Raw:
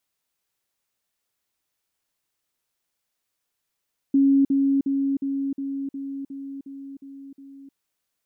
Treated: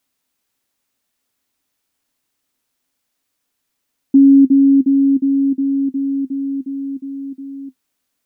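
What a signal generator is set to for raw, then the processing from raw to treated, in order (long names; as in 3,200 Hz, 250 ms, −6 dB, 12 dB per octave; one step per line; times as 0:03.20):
level staircase 275 Hz −14 dBFS, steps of −3 dB, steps 10, 0.31 s 0.05 s
parametric band 260 Hz +11 dB 0.3 octaves
in parallel at 0 dB: downward compressor, threshold −24 dBFS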